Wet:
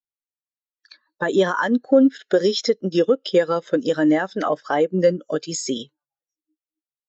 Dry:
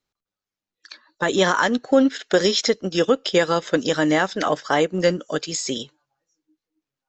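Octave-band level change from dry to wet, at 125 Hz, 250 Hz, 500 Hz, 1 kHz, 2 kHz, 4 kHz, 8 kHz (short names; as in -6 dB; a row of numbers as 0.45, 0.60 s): -1.0, +2.0, +1.5, -2.5, -4.0, -5.0, -4.0 dB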